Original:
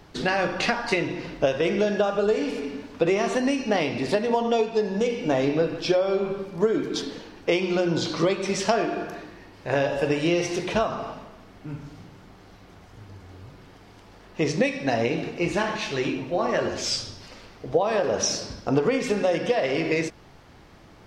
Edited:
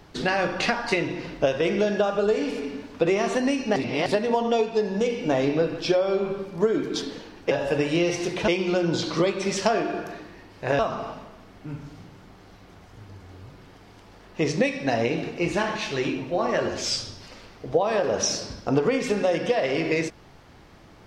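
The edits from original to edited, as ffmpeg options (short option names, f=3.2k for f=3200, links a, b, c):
-filter_complex "[0:a]asplit=6[a][b][c][d][e][f];[a]atrim=end=3.762[g];[b]atrim=start=3.758:end=4.062,asetpts=PTS-STARTPTS,areverse[h];[c]atrim=start=4.058:end=7.512[i];[d]atrim=start=9.818:end=10.792[j];[e]atrim=start=7.508:end=9.822[k];[f]atrim=start=10.788[l];[g][h]acrossfade=d=0.004:c1=hsin:c2=hsin[m];[m][i]acrossfade=d=0.004:c1=hsin:c2=hsin[n];[n][j]acrossfade=d=0.004:c1=hsin:c2=hsin[o];[o][k]acrossfade=d=0.004:c1=hsin:c2=hsin[p];[p][l]acrossfade=d=0.004:c1=hsin:c2=hsin"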